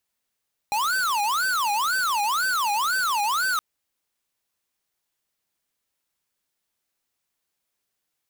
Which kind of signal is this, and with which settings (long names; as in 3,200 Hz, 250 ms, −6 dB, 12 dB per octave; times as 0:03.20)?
siren wail 815–1,540 Hz 2 per second square −23.5 dBFS 2.87 s